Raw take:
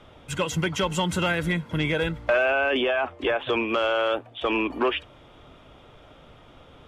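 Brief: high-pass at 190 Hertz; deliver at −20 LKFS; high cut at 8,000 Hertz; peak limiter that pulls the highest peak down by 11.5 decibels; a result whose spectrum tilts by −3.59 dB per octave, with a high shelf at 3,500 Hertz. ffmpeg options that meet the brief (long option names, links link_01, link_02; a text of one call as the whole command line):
ffmpeg -i in.wav -af "highpass=190,lowpass=8000,highshelf=frequency=3500:gain=-8.5,volume=13dB,alimiter=limit=-11.5dB:level=0:latency=1" out.wav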